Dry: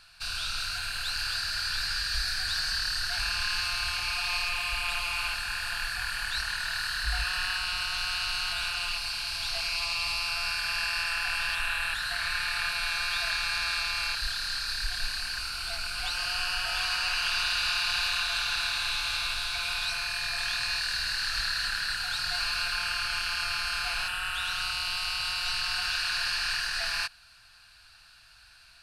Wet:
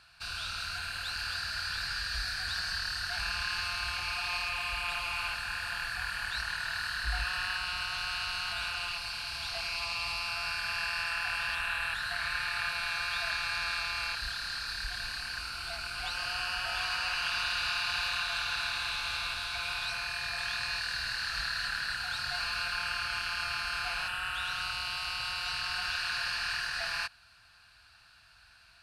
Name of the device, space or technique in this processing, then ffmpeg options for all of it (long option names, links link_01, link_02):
behind a face mask: -af "highpass=48,highshelf=frequency=2900:gain=-8"